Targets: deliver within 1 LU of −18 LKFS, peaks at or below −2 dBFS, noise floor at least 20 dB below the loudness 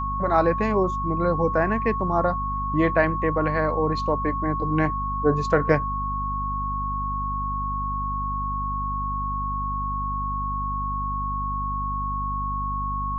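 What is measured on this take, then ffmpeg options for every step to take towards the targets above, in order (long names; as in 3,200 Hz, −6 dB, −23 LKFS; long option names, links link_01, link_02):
mains hum 50 Hz; hum harmonics up to 250 Hz; level of the hum −28 dBFS; interfering tone 1,100 Hz; level of the tone −26 dBFS; integrated loudness −25.0 LKFS; sample peak −5.0 dBFS; target loudness −18.0 LKFS
→ -af "bandreject=frequency=50:width_type=h:width=6,bandreject=frequency=100:width_type=h:width=6,bandreject=frequency=150:width_type=h:width=6,bandreject=frequency=200:width_type=h:width=6,bandreject=frequency=250:width_type=h:width=6"
-af "bandreject=frequency=1100:width=30"
-af "volume=7dB,alimiter=limit=-2dB:level=0:latency=1"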